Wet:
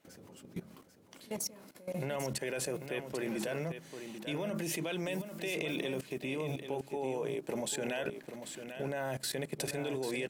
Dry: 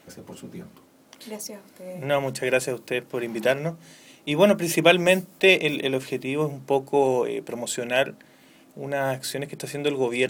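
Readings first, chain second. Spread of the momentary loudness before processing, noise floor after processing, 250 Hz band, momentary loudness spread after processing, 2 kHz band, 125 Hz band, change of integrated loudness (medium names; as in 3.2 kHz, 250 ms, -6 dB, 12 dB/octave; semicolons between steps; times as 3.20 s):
20 LU, -56 dBFS, -11.0 dB, 10 LU, -15.0 dB, -9.0 dB, -14.0 dB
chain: peak limiter -13.5 dBFS, peak gain reduction 11.5 dB; level held to a coarse grid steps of 18 dB; on a send: delay 793 ms -9 dB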